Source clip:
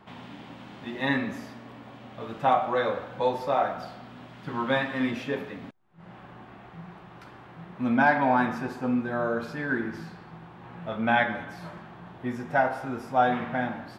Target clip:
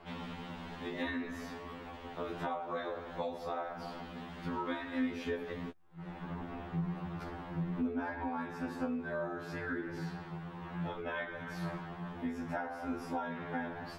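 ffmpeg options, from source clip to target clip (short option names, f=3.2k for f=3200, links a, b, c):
-filter_complex "[0:a]asettb=1/sr,asplit=3[a][b][c];[a]atrim=end=6.224[d];[b]atrim=start=6.22:end=8.28,asetpts=PTS-STARTPTS,afade=t=in:d=0.004:c=qsin,afade=t=out:st=2.056:d=0.004:c=qsin,lowshelf=f=450:g=9[e];[c]atrim=start=8.276[f];[d][e]acrossfade=d=0.004:c1=hsin:c2=qsin[g];[g][f]acrossfade=d=0.004:c1=qsin:c2=hsin,acompressor=threshold=-35dB:ratio=8,tremolo=f=200:d=0.71,afftfilt=real='re*2*eq(mod(b,4),0)':imag='im*2*eq(mod(b,4),0)':win_size=2048:overlap=0.75,volume=5.5dB"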